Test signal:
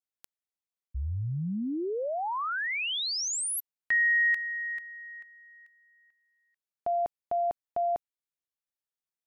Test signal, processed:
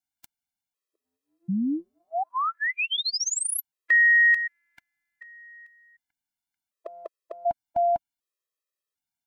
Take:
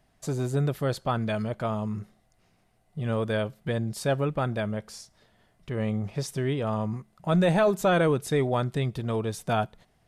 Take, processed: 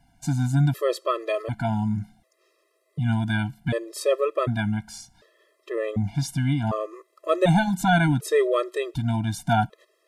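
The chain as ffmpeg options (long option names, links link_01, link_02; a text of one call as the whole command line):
ffmpeg -i in.wav -af "afftfilt=real='re*gt(sin(2*PI*0.67*pts/sr)*(1-2*mod(floor(b*sr/1024/340),2)),0)':imag='im*gt(sin(2*PI*0.67*pts/sr)*(1-2*mod(floor(b*sr/1024/340),2)),0)':win_size=1024:overlap=0.75,volume=6.5dB" out.wav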